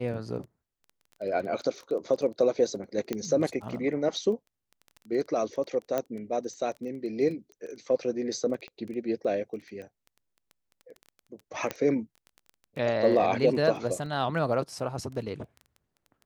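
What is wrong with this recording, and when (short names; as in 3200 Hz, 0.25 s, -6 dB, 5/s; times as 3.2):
crackle 14/s -37 dBFS
3.13 pop -16 dBFS
5.98 pop -15 dBFS
8.68 pop -30 dBFS
11.71 pop -15 dBFS
14.06 gap 2.3 ms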